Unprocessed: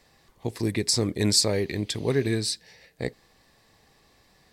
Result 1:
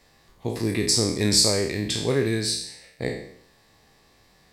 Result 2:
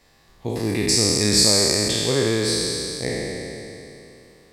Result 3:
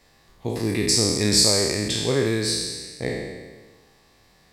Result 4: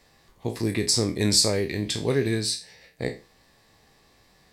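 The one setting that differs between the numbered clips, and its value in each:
spectral sustain, RT60: 0.67 s, 2.92 s, 1.4 s, 0.31 s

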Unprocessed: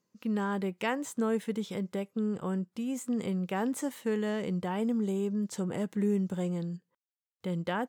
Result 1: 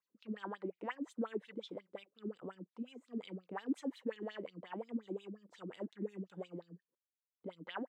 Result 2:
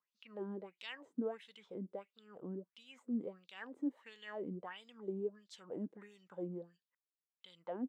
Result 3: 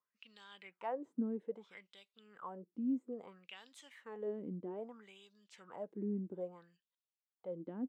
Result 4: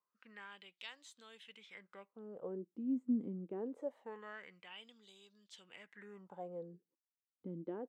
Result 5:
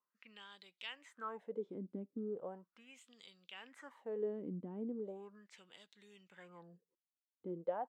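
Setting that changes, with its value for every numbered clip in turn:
wah-wah, rate: 5.6 Hz, 1.5 Hz, 0.61 Hz, 0.24 Hz, 0.38 Hz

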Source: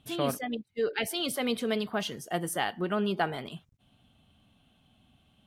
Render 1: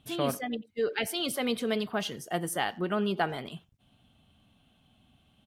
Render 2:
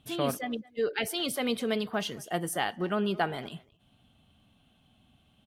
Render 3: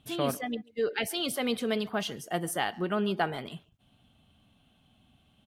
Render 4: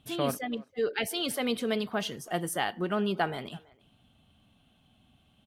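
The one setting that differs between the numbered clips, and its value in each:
speakerphone echo, time: 90 ms, 220 ms, 140 ms, 330 ms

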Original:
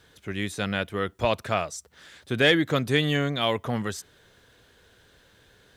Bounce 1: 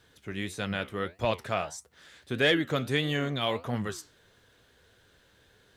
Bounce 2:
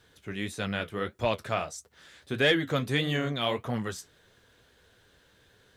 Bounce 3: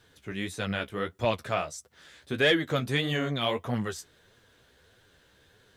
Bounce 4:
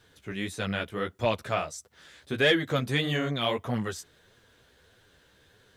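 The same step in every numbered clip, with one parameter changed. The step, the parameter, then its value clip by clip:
flange, regen: +73%, -47%, +25%, -6%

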